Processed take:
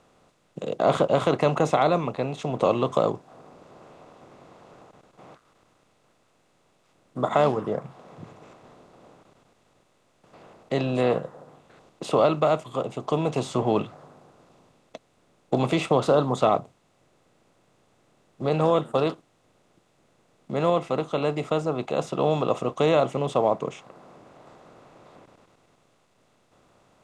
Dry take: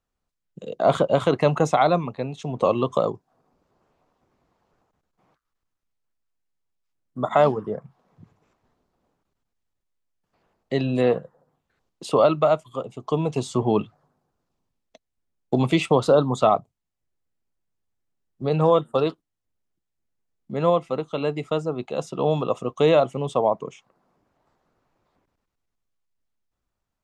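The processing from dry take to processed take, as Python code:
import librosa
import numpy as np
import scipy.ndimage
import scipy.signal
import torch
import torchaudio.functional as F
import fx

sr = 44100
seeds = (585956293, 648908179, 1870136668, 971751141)

y = fx.bin_compress(x, sr, power=0.6)
y = y * 10.0 ** (-5.5 / 20.0)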